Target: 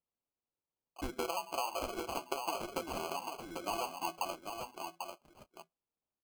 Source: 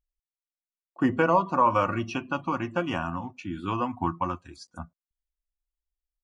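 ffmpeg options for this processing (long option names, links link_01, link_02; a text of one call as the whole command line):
ffmpeg -i in.wav -filter_complex "[0:a]highpass=570,aecho=1:1:6.1:0.39,acompressor=threshold=-29dB:ratio=10,acrusher=samples=24:mix=1:aa=0.000001,asplit=2[link_01][link_02];[link_02]aecho=0:1:794:0.501[link_03];[link_01][link_03]amix=inputs=2:normalize=0,volume=-4dB" out.wav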